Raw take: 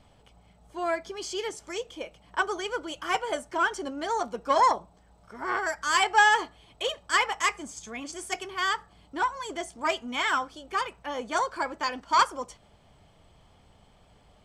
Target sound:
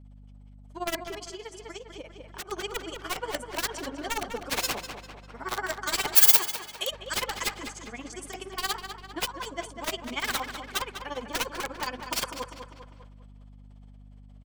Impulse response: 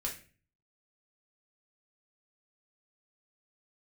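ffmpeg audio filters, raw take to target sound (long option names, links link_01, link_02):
-filter_complex "[0:a]acrossover=split=280|2400[link_01][link_02][link_03];[link_02]aeval=exprs='(mod(12.6*val(0)+1,2)-1)/12.6':channel_layout=same[link_04];[link_01][link_04][link_03]amix=inputs=3:normalize=0,tremolo=f=17:d=0.9,asplit=2[link_05][link_06];[link_06]adelay=199,lowpass=frequency=4200:poles=1,volume=-8dB,asplit=2[link_07][link_08];[link_08]adelay=199,lowpass=frequency=4200:poles=1,volume=0.53,asplit=2[link_09][link_10];[link_10]adelay=199,lowpass=frequency=4200:poles=1,volume=0.53,asplit=2[link_11][link_12];[link_12]adelay=199,lowpass=frequency=4200:poles=1,volume=0.53,asplit=2[link_13][link_14];[link_14]adelay=199,lowpass=frequency=4200:poles=1,volume=0.53,asplit=2[link_15][link_16];[link_16]adelay=199,lowpass=frequency=4200:poles=1,volume=0.53[link_17];[link_07][link_09][link_11][link_13][link_15][link_17]amix=inputs=6:normalize=0[link_18];[link_05][link_18]amix=inputs=2:normalize=0,agate=range=-33dB:threshold=-53dB:ratio=3:detection=peak,acontrast=77,aeval=exprs='val(0)+0.00794*(sin(2*PI*50*n/s)+sin(2*PI*2*50*n/s)/2+sin(2*PI*3*50*n/s)/3+sin(2*PI*4*50*n/s)/4+sin(2*PI*5*50*n/s)/5)':channel_layout=same,asettb=1/sr,asplit=3[link_19][link_20][link_21];[link_19]atrim=end=1.174[link_22];[link_20]atrim=start=1.17:end=2.49,asetpts=PTS-STARTPTS,afade=type=in:duration=0.004:curve=qsin,afade=type=out:start_time=1.316:duration=0.004:curve=qsin,acompressor=threshold=-31dB:ratio=6[link_23];[link_21]atrim=start=2.486[link_24];[link_22][link_23]acrossfade=duration=0.004:curve1=hsin:curve2=qsin[link_25];[link_25][link_24]acrossfade=duration=0.004:curve1=qsin:curve2=hsin,asettb=1/sr,asplit=3[link_26][link_27][link_28];[link_26]atrim=end=6.154[link_29];[link_27]atrim=start=6.15:end=6.91,asetpts=PTS-STARTPTS,afade=type=in:duration=0.004:curve=qsin,afade=type=out:start_time=0.756:duration=0.004:curve=qsin,aemphasis=mode=production:type=bsi[link_30];[link_28]atrim=start=6.906[link_31];[link_29][link_30]acrossfade=duration=0.004:curve1=hsin:curve2=qsin[link_32];[link_32][link_31]acrossfade=duration=0.004:curve1=qsin:curve2=hsin,volume=-6dB"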